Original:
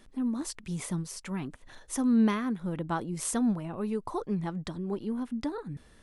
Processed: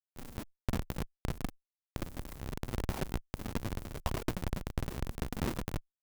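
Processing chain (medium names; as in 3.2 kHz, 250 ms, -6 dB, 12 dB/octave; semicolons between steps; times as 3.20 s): peaking EQ 130 Hz +3.5 dB 0.25 oct; hum notches 50/100/150/200/250/300 Hz; LPC vocoder at 8 kHz whisper; Schmitt trigger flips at -36 dBFS; Chebyshev shaper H 3 -7 dB, 4 -14 dB, 6 -19 dB, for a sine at -25.5 dBFS; trim +4.5 dB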